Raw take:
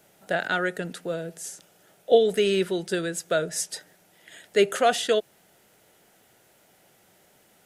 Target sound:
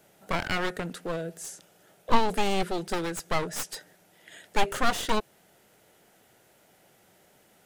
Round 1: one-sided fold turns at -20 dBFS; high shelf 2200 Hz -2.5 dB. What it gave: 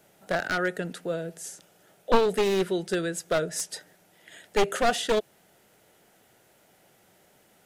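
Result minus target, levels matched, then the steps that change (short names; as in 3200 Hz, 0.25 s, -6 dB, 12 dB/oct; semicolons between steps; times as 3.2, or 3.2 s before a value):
one-sided fold: distortion -12 dB
change: one-sided fold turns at -30.5 dBFS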